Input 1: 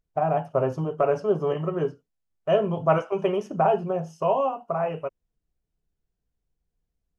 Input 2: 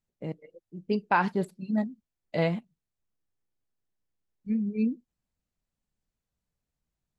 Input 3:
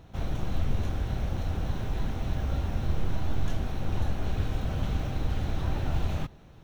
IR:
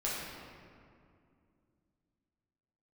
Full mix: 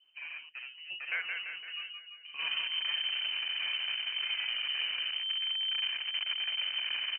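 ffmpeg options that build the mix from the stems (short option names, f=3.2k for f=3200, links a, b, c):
-filter_complex "[0:a]aeval=exprs='(tanh(8.91*val(0)+0.4)-tanh(0.4))/8.91':c=same,volume=-20dB[a];[1:a]volume=-16.5dB,asplit=2[b][c];[c]volume=-5dB[d];[2:a]equalizer=f=680:w=4.3:g=13.5,adynamicsmooth=sensitivity=7.5:basefreq=960,asoftclip=type=tanh:threshold=-32.5dB,adelay=2250,volume=-1dB,asplit=2[e][f];[f]volume=-22dB[g];[d][g]amix=inputs=2:normalize=0,aecho=0:1:170|340|510|680|850|1020|1190|1360:1|0.54|0.292|0.157|0.085|0.0459|0.0248|0.0134[h];[a][b][e][h]amix=inputs=4:normalize=0,adynamicequalizer=threshold=0.00158:dfrequency=1400:dqfactor=0.84:tfrequency=1400:tqfactor=0.84:attack=5:release=100:ratio=0.375:range=3.5:mode=boostabove:tftype=bell,acompressor=mode=upward:threshold=-44dB:ratio=2.5,lowpass=f=2.6k:t=q:w=0.5098,lowpass=f=2.6k:t=q:w=0.6013,lowpass=f=2.6k:t=q:w=0.9,lowpass=f=2.6k:t=q:w=2.563,afreqshift=-3100"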